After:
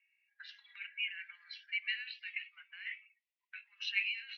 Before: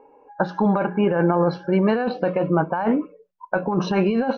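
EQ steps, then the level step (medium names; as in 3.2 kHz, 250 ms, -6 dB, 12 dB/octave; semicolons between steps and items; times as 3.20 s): rippled Chebyshev high-pass 1.9 kHz, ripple 3 dB; distance through air 380 m; +9.0 dB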